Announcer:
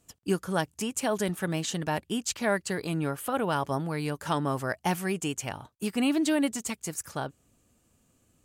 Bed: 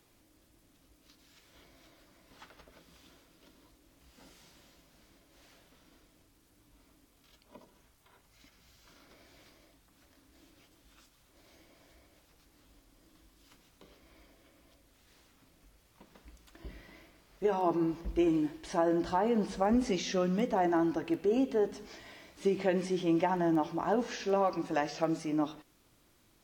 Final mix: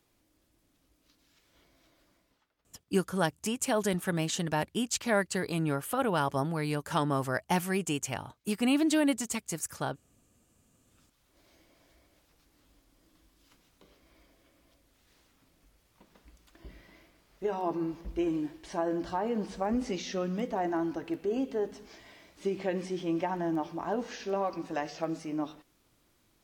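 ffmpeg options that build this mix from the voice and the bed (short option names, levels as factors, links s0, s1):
-filter_complex "[0:a]adelay=2650,volume=0.944[s0];[1:a]volume=5.62,afade=t=out:st=2.11:d=0.32:silence=0.133352,afade=t=in:st=10.67:d=0.72:silence=0.0944061[s1];[s0][s1]amix=inputs=2:normalize=0"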